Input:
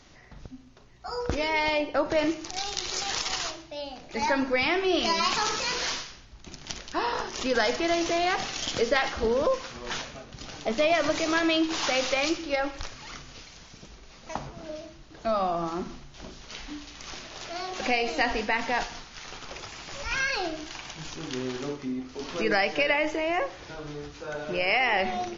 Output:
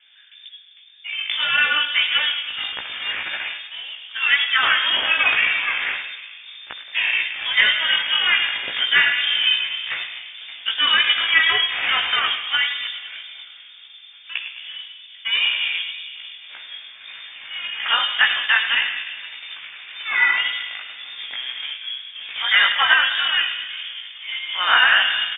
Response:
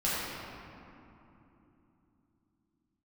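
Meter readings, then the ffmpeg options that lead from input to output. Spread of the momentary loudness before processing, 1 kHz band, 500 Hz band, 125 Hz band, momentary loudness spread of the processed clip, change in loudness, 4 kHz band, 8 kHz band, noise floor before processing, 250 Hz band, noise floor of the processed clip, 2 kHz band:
17 LU, +2.0 dB, -15.0 dB, under -10 dB, 19 LU, +9.0 dB, +14.5 dB, n/a, -50 dBFS, under -15 dB, -45 dBFS, +12.0 dB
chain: -filter_complex "[0:a]aecho=1:1:104|208|312|416|520|624:0.316|0.177|0.0992|0.0555|0.0311|0.0174,asplit=2[a][b];[1:a]atrim=start_sample=2205[c];[b][c]afir=irnorm=-1:irlink=0,volume=-16dB[d];[a][d]amix=inputs=2:normalize=0,adynamicsmooth=sensitivity=1.5:basefreq=960,equalizer=f=1.5k:t=o:w=1.7:g=11,lowpass=f=3.1k:t=q:w=0.5098,lowpass=f=3.1k:t=q:w=0.6013,lowpass=f=3.1k:t=q:w=0.9,lowpass=f=3.1k:t=q:w=2.563,afreqshift=-3600,equalizer=f=100:t=o:w=0.67:g=4,equalizer=f=250:t=o:w=0.67:g=3,equalizer=f=1.6k:t=o:w=0.67:g=3,flanger=delay=15.5:depth=2.8:speed=1.8,volume=2.5dB"

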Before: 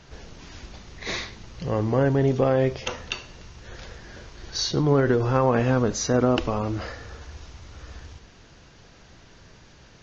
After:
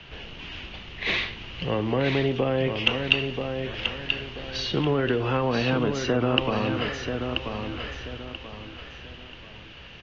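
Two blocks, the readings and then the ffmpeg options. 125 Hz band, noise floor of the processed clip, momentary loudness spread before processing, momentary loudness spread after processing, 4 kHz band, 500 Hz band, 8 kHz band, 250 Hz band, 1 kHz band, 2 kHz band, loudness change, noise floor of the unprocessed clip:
-3.5 dB, -45 dBFS, 22 LU, 17 LU, +6.0 dB, -2.5 dB, n/a, -1.5 dB, -1.5 dB, +6.0 dB, -2.5 dB, -51 dBFS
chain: -filter_complex "[0:a]acrossover=split=140|350[a][b][c];[a]acompressor=threshold=-41dB:ratio=4[d];[b]acompressor=threshold=-28dB:ratio=4[e];[c]acompressor=threshold=-28dB:ratio=4[f];[d][e][f]amix=inputs=3:normalize=0,lowpass=f=2.9k:t=q:w=5.3,aecho=1:1:984|1968|2952|3936:0.501|0.165|0.0546|0.018,volume=1.5dB"

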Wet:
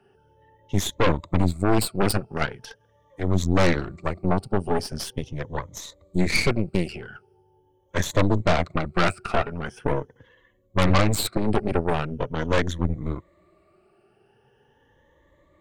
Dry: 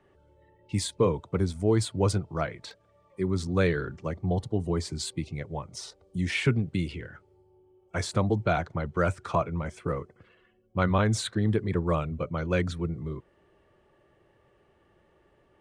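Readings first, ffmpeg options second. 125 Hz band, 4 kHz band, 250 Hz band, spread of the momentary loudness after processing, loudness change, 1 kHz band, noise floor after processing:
+2.0 dB, +6.0 dB, +4.0 dB, 11 LU, +4.0 dB, +6.0 dB, -63 dBFS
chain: -af "afftfilt=real='re*pow(10,16/40*sin(2*PI*(1.1*log(max(b,1)*sr/1024/100)/log(2)-(0.42)*(pts-256)/sr)))':imag='im*pow(10,16/40*sin(2*PI*(1.1*log(max(b,1)*sr/1024/100)/log(2)-(0.42)*(pts-256)/sr)))':win_size=1024:overlap=0.75,aeval=exprs='0.422*(cos(1*acos(clip(val(0)/0.422,-1,1)))-cos(1*PI/2))+0.0376*(cos(5*acos(clip(val(0)/0.422,-1,1)))-cos(5*PI/2))+0.133*(cos(8*acos(clip(val(0)/0.422,-1,1)))-cos(8*PI/2))':c=same,volume=-3dB"

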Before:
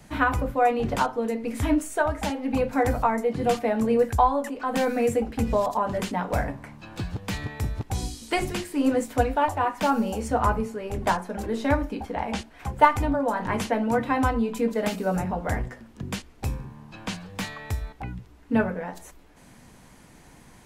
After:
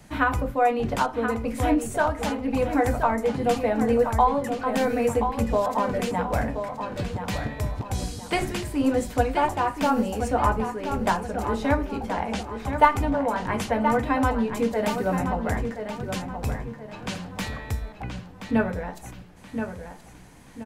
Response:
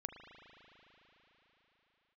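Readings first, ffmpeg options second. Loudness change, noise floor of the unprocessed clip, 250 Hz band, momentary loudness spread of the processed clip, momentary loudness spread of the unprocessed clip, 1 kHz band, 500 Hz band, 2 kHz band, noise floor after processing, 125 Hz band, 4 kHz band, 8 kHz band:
+0.5 dB, -51 dBFS, +1.0 dB, 11 LU, 12 LU, +1.0 dB, +1.0 dB, +0.5 dB, -46 dBFS, +1.0 dB, +0.5 dB, 0.0 dB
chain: -filter_complex "[0:a]asplit=2[a][b];[b]adelay=1026,lowpass=f=4.8k:p=1,volume=-7.5dB,asplit=2[c][d];[d]adelay=1026,lowpass=f=4.8k:p=1,volume=0.39,asplit=2[e][f];[f]adelay=1026,lowpass=f=4.8k:p=1,volume=0.39,asplit=2[g][h];[h]adelay=1026,lowpass=f=4.8k:p=1,volume=0.39[i];[a][c][e][g][i]amix=inputs=5:normalize=0"

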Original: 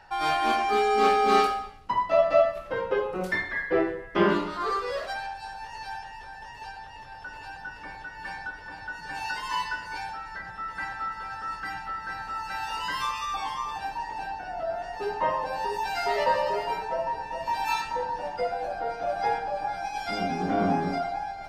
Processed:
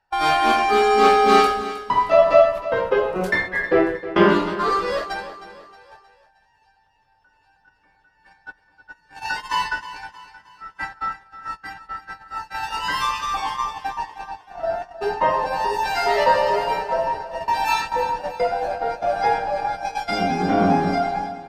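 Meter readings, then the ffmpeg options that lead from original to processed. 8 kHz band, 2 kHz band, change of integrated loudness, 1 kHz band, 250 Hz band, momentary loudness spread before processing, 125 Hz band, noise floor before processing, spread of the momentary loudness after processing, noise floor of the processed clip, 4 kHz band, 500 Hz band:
+6.5 dB, +6.0 dB, +7.5 dB, +6.5 dB, +7.0 dB, 16 LU, +7.0 dB, -43 dBFS, 17 LU, -62 dBFS, +6.5 dB, +7.0 dB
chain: -af "agate=range=-27dB:threshold=-32dB:ratio=16:detection=peak,aecho=1:1:313|626|939|1252:0.2|0.0898|0.0404|0.0182,volume=7dB"

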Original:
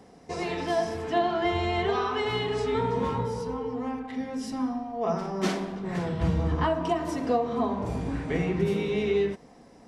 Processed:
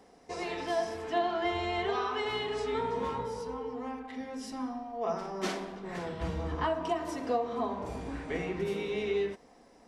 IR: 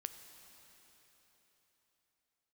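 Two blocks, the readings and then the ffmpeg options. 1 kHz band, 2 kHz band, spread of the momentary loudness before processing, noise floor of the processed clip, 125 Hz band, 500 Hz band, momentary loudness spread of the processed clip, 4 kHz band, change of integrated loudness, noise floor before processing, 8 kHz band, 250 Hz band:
-4.0 dB, -3.5 dB, 6 LU, -59 dBFS, -11.5 dB, -5.0 dB, 8 LU, -3.5 dB, -5.5 dB, -52 dBFS, -3.5 dB, -8.0 dB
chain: -af "equalizer=f=130:t=o:w=1.6:g=-11,volume=-3.5dB"

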